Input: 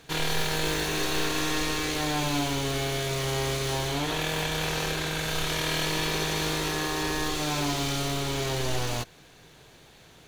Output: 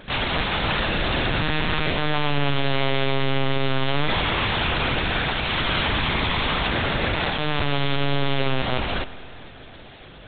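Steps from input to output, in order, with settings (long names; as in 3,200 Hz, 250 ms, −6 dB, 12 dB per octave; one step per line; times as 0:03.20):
harmonic generator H 3 −7 dB, 4 −28 dB, 6 −13 dB, 7 −14 dB, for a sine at −13 dBFS
linear-prediction vocoder at 8 kHz pitch kept
spring reverb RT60 2.6 s, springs 49 ms, chirp 50 ms, DRR 14.5 dB
level +5.5 dB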